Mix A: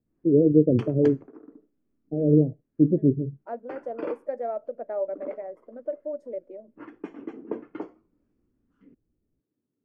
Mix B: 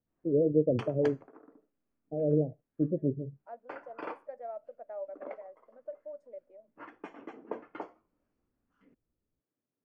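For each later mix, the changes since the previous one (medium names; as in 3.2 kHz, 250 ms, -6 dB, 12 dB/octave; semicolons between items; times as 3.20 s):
second voice -11.5 dB; master: add resonant low shelf 480 Hz -8.5 dB, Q 1.5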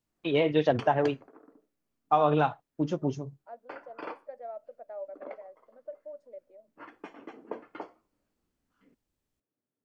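first voice: remove steep low-pass 580 Hz 72 dB/octave; master: add peaking EQ 4.3 kHz +7.5 dB 0.94 oct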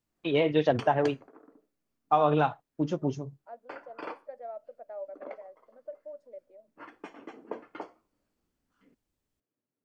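background: remove distance through air 63 m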